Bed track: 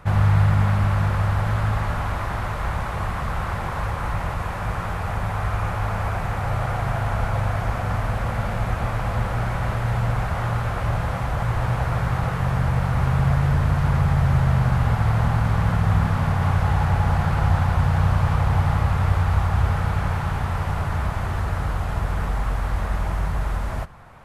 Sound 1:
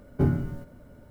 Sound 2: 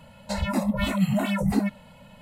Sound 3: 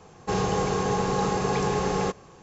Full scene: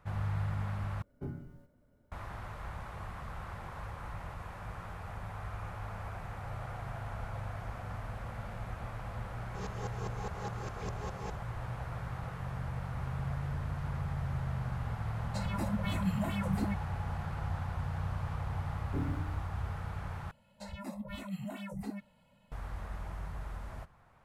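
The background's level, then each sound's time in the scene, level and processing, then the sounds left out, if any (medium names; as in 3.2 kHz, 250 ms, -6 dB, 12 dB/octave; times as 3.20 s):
bed track -17 dB
1.02 s: replace with 1 -18 dB
9.26 s: add 3 -12.5 dB + sawtooth tremolo in dB swelling 4.9 Hz, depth 21 dB
15.05 s: add 2 -11.5 dB + comb 5.9 ms, depth 38%
18.74 s: add 1 -15 dB + FDN reverb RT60 0.57 s, high-frequency decay 1×, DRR 3 dB
20.31 s: replace with 2 -17 dB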